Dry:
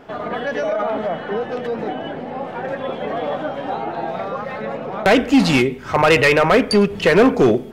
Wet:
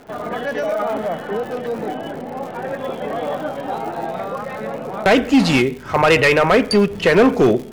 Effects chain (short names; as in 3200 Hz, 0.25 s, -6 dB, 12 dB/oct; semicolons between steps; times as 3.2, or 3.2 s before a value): crackle 150/s -28 dBFS; mismatched tape noise reduction decoder only